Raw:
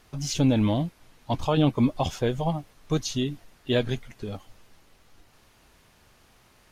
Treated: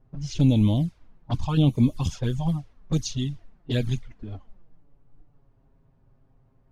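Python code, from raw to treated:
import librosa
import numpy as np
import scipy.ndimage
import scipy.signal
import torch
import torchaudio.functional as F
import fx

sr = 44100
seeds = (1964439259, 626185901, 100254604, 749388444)

y = fx.env_lowpass(x, sr, base_hz=740.0, full_db=-20.5)
y = fx.bass_treble(y, sr, bass_db=10, treble_db=12)
y = fx.env_flanger(y, sr, rest_ms=7.8, full_db=-12.5)
y = y * librosa.db_to_amplitude(-4.0)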